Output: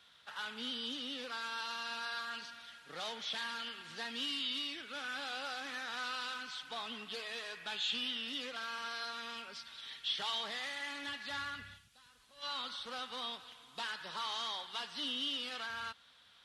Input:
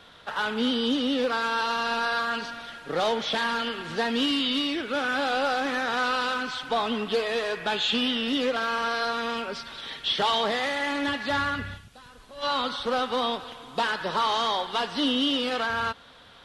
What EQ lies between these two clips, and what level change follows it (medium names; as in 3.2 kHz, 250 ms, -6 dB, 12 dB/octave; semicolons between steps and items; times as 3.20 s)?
high-pass 59 Hz; amplifier tone stack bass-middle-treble 5-5-5; peaking EQ 94 Hz -3.5 dB 1.4 oct; -2.0 dB